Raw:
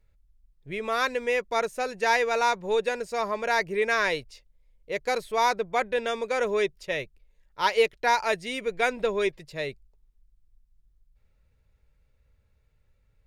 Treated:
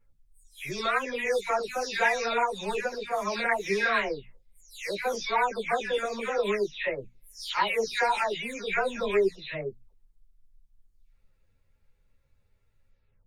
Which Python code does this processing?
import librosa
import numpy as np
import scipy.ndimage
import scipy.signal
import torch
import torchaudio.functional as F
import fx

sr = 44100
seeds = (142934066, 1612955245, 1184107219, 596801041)

y = fx.spec_delay(x, sr, highs='early', ms=373)
y = fx.hum_notches(y, sr, base_hz=60, count=4)
y = fx.ensemble(y, sr)
y = y * librosa.db_to_amplitude(3.0)